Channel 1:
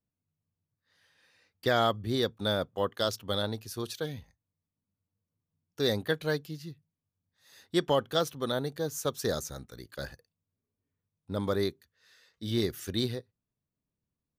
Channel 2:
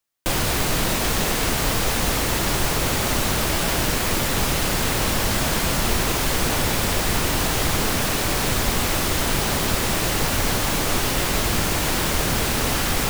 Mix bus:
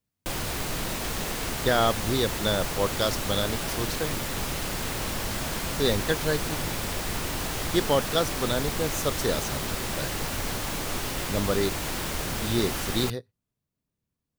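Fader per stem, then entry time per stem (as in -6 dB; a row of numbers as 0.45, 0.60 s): +3.0, -9.0 dB; 0.00, 0.00 s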